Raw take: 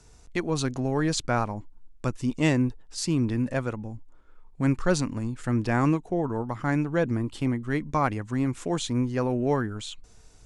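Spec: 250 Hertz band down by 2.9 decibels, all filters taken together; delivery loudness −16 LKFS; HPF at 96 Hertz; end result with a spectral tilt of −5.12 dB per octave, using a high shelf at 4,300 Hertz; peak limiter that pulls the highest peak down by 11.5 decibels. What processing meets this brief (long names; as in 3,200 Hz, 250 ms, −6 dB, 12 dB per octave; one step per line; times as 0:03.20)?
high-pass filter 96 Hz
parametric band 250 Hz −3.5 dB
high-shelf EQ 4,300 Hz +6 dB
level +16.5 dB
brickwall limiter −5 dBFS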